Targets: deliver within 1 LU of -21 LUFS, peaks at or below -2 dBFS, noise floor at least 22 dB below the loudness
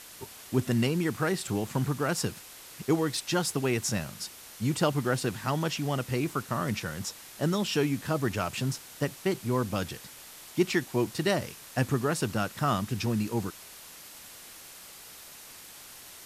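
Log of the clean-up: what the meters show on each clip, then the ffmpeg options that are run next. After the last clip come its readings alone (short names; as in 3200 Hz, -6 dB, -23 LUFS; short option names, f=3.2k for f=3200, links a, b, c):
noise floor -48 dBFS; noise floor target -52 dBFS; loudness -30.0 LUFS; peak -12.0 dBFS; loudness target -21.0 LUFS
-> -af "afftdn=nr=6:nf=-48"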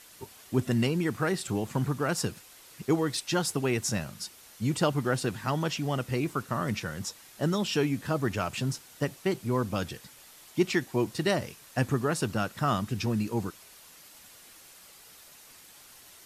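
noise floor -53 dBFS; loudness -30.0 LUFS; peak -12.0 dBFS; loudness target -21.0 LUFS
-> -af "volume=9dB"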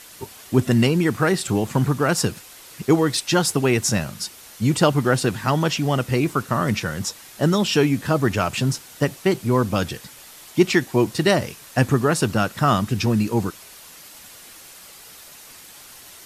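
loudness -21.0 LUFS; peak -3.0 dBFS; noise floor -44 dBFS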